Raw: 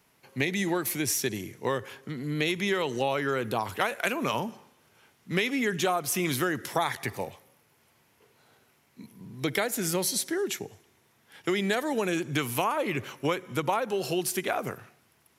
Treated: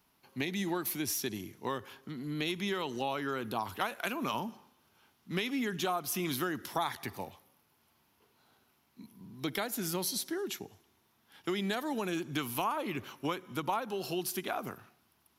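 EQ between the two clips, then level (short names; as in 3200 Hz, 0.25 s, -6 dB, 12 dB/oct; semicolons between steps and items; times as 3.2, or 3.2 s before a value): ten-band EQ 125 Hz -9 dB, 500 Hz -10 dB, 2000 Hz -9 dB, 8000 Hz -10 dB; 0.0 dB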